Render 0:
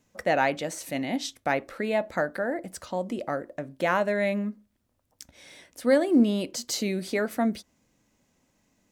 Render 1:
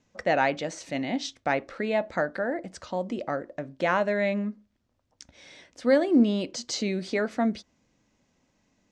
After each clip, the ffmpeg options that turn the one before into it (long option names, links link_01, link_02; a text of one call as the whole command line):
ffmpeg -i in.wav -af "lowpass=frequency=6600:width=0.5412,lowpass=frequency=6600:width=1.3066" out.wav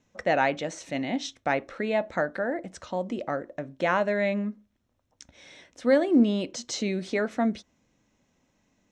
ffmpeg -i in.wav -af "bandreject=frequency=4700:width=8.1" out.wav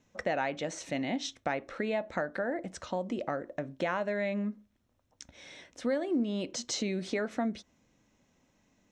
ffmpeg -i in.wav -af "acompressor=threshold=-30dB:ratio=3" out.wav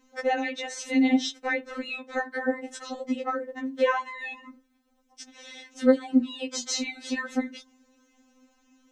ffmpeg -i in.wav -af "afftfilt=real='re*3.46*eq(mod(b,12),0)':imag='im*3.46*eq(mod(b,12),0)':win_size=2048:overlap=0.75,volume=8dB" out.wav